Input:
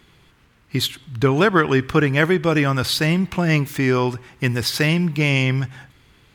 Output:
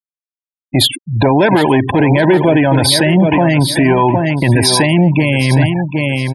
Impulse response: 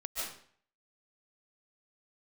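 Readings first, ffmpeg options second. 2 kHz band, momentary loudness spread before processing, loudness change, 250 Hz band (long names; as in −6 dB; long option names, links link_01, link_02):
+4.0 dB, 8 LU, +7.5 dB, +9.0 dB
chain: -filter_complex "[0:a]asoftclip=type=tanh:threshold=-16dB,highpass=frequency=96:width=0.5412,highpass=frequency=96:width=1.3066,acrossover=split=9900[link_01][link_02];[link_02]acompressor=threshold=-49dB:ratio=4:attack=1:release=60[link_03];[link_01][link_03]amix=inputs=2:normalize=0,superequalizer=6b=1.78:8b=3.16:9b=2.82:10b=0.316:16b=3.55,afftfilt=real='re*gte(hypot(re,im),0.0447)':imag='im*gte(hypot(re,im),0.0447)':win_size=1024:overlap=0.75,aecho=1:1:764|1528:0.282|0.0451,alimiter=level_in=16.5dB:limit=-1dB:release=50:level=0:latency=1,volume=-1dB"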